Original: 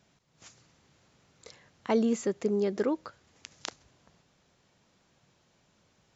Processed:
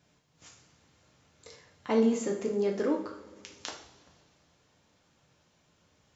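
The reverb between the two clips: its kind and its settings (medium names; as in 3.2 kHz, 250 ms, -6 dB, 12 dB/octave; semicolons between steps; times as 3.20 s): two-slope reverb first 0.51 s, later 2.3 s, from -18 dB, DRR -0.5 dB; trim -3 dB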